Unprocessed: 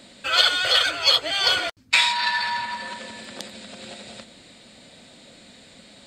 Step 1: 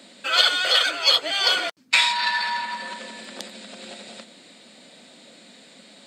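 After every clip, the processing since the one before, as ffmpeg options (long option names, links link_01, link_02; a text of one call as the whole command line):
ffmpeg -i in.wav -af "highpass=frequency=180:width=0.5412,highpass=frequency=180:width=1.3066" out.wav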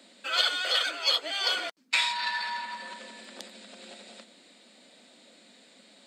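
ffmpeg -i in.wav -af "highpass=frequency=190:width=0.5412,highpass=frequency=190:width=1.3066,volume=-7.5dB" out.wav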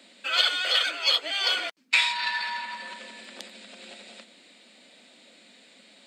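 ffmpeg -i in.wav -af "equalizer=frequency=2500:width=1.4:gain=5.5" out.wav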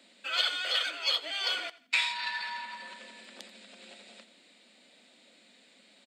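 ffmpeg -i in.wav -af "aecho=1:1:85|170|255:0.112|0.037|0.0122,volume=-6dB" out.wav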